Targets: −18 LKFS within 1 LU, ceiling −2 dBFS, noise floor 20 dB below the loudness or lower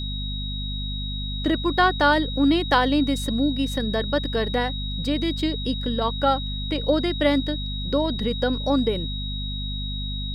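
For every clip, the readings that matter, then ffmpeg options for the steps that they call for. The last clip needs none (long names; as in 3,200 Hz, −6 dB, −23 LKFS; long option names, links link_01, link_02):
mains hum 50 Hz; hum harmonics up to 250 Hz; level of the hum −27 dBFS; interfering tone 3,800 Hz; level of the tone −32 dBFS; integrated loudness −24.0 LKFS; sample peak −5.5 dBFS; target loudness −18.0 LKFS
→ -af "bandreject=frequency=50:width_type=h:width=6,bandreject=frequency=100:width_type=h:width=6,bandreject=frequency=150:width_type=h:width=6,bandreject=frequency=200:width_type=h:width=6,bandreject=frequency=250:width_type=h:width=6"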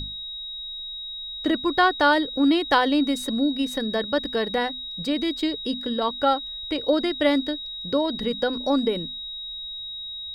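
mains hum none found; interfering tone 3,800 Hz; level of the tone −32 dBFS
→ -af "bandreject=frequency=3800:width=30"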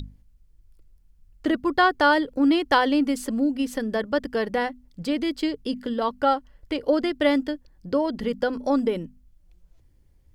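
interfering tone none found; integrated loudness −24.0 LKFS; sample peak −6.5 dBFS; target loudness −18.0 LKFS
→ -af "volume=6dB,alimiter=limit=-2dB:level=0:latency=1"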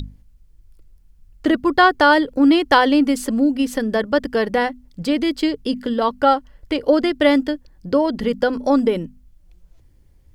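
integrated loudness −18.5 LKFS; sample peak −2.0 dBFS; background noise floor −52 dBFS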